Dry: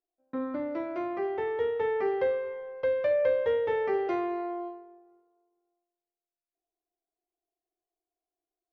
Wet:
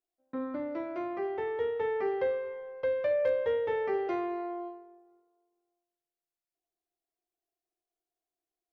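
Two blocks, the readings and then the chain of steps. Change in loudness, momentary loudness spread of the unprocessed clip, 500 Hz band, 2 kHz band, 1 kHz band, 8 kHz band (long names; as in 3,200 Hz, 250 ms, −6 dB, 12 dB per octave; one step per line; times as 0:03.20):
−2.5 dB, 11 LU, −2.5 dB, −2.5 dB, −2.5 dB, can't be measured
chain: hard clipping −17 dBFS, distortion −46 dB
level −2.5 dB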